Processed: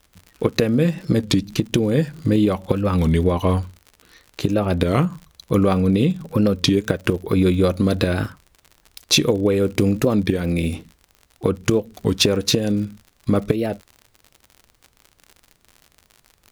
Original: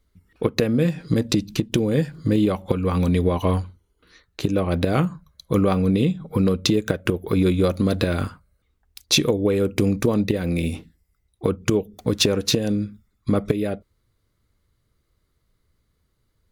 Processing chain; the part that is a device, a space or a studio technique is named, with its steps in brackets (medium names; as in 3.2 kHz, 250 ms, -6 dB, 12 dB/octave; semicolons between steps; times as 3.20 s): warped LP (warped record 33 1/3 rpm, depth 160 cents; crackle 68 per s -34 dBFS; pink noise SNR 45 dB); trim +2 dB